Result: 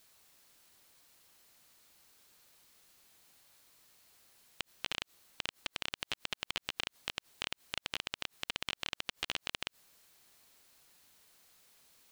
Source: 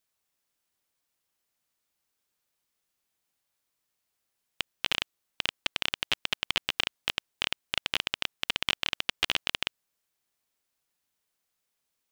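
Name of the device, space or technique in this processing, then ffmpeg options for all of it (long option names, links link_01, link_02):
de-esser from a sidechain: -filter_complex "[0:a]equalizer=frequency=4200:width_type=o:width=0.21:gain=3.5,asplit=2[link_01][link_02];[link_02]highpass=6300,apad=whole_len=534300[link_03];[link_01][link_03]sidechaincompress=threshold=-56dB:ratio=20:attack=2.4:release=50,volume=16dB"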